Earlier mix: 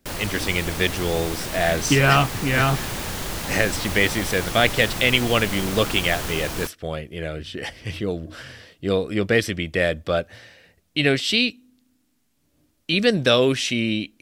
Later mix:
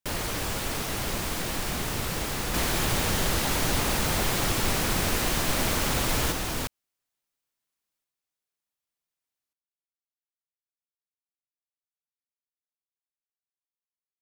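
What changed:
speech: muted
second sound +7.5 dB

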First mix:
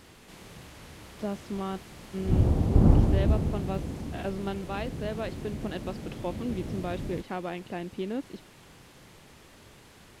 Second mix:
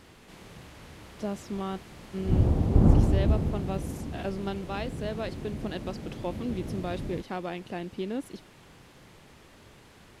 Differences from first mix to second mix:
speech: remove low-pass filter 3,300 Hz
master: add high-shelf EQ 4,900 Hz −5 dB

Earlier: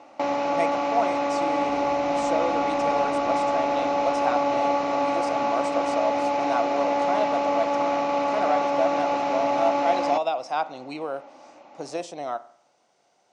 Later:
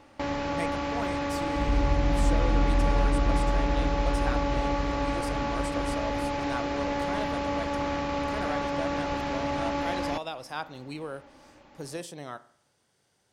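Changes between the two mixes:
speech −7.5 dB
first sound −6.0 dB
master: remove loudspeaker in its box 320–6,400 Hz, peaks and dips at 420 Hz −4 dB, 700 Hz +9 dB, 1,700 Hz −10 dB, 3,300 Hz −7 dB, 4,700 Hz −6 dB

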